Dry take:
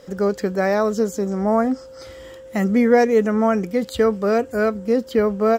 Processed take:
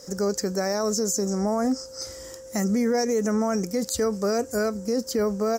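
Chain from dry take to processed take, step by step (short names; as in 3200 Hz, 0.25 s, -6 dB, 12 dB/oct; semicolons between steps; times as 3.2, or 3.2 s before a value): resonant high shelf 4300 Hz +10.5 dB, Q 3; limiter -13.5 dBFS, peak gain reduction 9.5 dB; gain -2.5 dB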